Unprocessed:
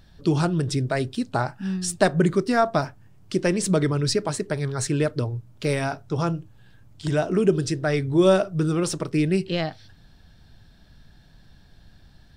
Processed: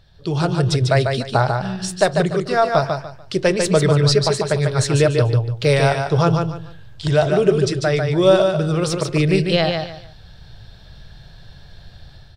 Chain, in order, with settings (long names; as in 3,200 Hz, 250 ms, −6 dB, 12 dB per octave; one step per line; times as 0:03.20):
octave-band graphic EQ 125/250/500/4,000 Hz +5/−12/+5/+7 dB
automatic gain control gain up to 9.5 dB
high-shelf EQ 3,900 Hz −6.5 dB
repeating echo 146 ms, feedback 26%, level −5 dB
level −1 dB